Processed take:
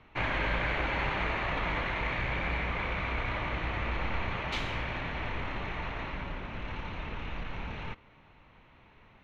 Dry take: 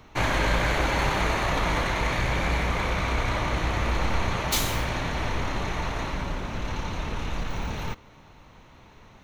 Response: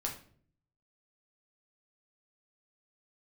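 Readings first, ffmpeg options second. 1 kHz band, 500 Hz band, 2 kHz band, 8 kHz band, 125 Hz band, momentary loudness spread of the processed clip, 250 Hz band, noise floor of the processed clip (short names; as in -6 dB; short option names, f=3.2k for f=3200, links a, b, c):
-7.0 dB, -7.5 dB, -4.0 dB, -24.0 dB, -8.0 dB, 9 LU, -8.0 dB, -59 dBFS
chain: -af "lowpass=f=2.6k:t=q:w=1.7,volume=-8dB"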